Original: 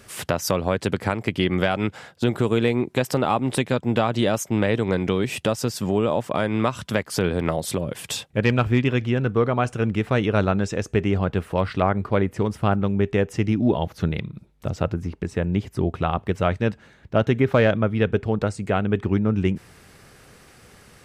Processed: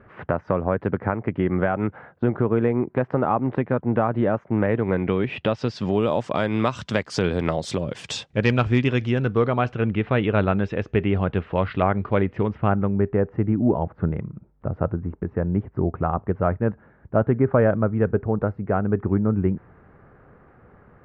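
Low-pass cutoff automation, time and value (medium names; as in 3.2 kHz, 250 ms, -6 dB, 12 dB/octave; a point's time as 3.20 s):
low-pass 24 dB/octave
4.50 s 1.7 kHz
5.34 s 2.9 kHz
6.14 s 6.6 kHz
9.19 s 6.6 kHz
9.85 s 3.3 kHz
12.30 s 3.3 kHz
13.16 s 1.5 kHz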